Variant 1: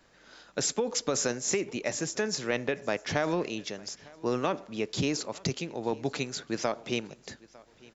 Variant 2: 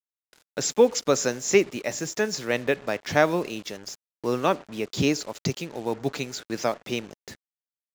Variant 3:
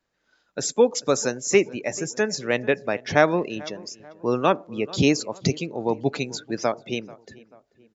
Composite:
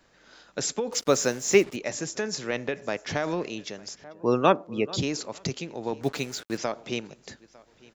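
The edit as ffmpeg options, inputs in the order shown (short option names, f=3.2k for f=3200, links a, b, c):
-filter_complex "[1:a]asplit=2[a][b];[0:a]asplit=4[c][d][e][f];[c]atrim=end=0.922[g];[a]atrim=start=0.918:end=1.762[h];[d]atrim=start=1.758:end=4.042[i];[2:a]atrim=start=4.038:end=5.002[j];[e]atrim=start=4.998:end=6.012[k];[b]atrim=start=6.008:end=6.572[l];[f]atrim=start=6.568[m];[g][h]acrossfade=d=0.004:c1=hsin:c2=hsin[n];[n][i]acrossfade=d=0.004:c1=hsin:c2=hsin[o];[o][j]acrossfade=d=0.004:c1=hsin:c2=hsin[p];[p][k]acrossfade=d=0.004:c1=hsin:c2=hsin[q];[q][l]acrossfade=d=0.004:c1=hsin:c2=hsin[r];[r][m]acrossfade=d=0.004:c1=hsin:c2=hsin"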